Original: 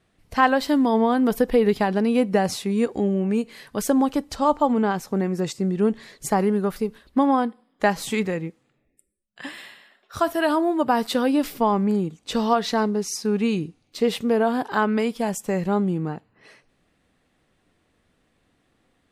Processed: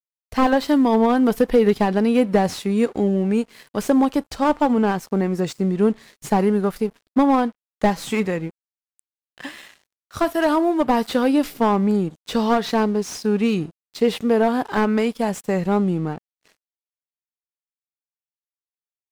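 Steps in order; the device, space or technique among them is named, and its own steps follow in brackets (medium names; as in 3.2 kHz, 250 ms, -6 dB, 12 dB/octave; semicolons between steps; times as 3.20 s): early transistor amplifier (crossover distortion -46.5 dBFS; slew-rate limiter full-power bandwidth 120 Hz); trim +3 dB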